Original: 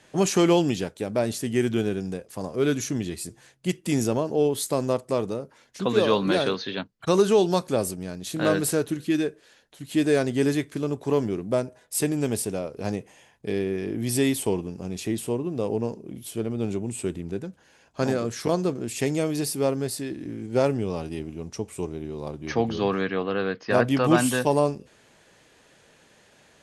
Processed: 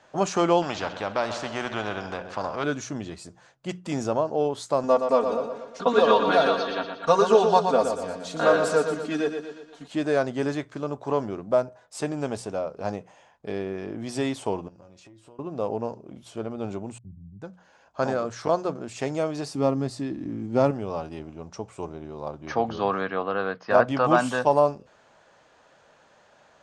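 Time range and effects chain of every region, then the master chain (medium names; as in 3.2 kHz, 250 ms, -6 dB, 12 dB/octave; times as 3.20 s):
0.62–2.64 s: low-pass 3.5 kHz + multi-head delay 65 ms, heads first and second, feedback 54%, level -20 dB + spectrum-flattening compressor 2:1
4.83–9.88 s: band-stop 200 Hz, Q 5.1 + comb 4.3 ms, depth 100% + feedback delay 119 ms, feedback 50%, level -7 dB
14.68–15.39 s: band-stop 790 Hz + feedback comb 110 Hz, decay 0.18 s, harmonics odd, mix 80% + compression 12:1, threshold -42 dBFS
16.98–17.42 s: inverse Chebyshev low-pass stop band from 560 Hz, stop band 60 dB + three bands expanded up and down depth 70%
19.55–20.71 s: resonant low shelf 370 Hz +6.5 dB, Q 1.5 + band-stop 1.5 kHz, Q 9.3
whole clip: low-pass 7.2 kHz 24 dB/octave; high-order bell 900 Hz +9.5 dB; hum notches 60/120/180 Hz; trim -5 dB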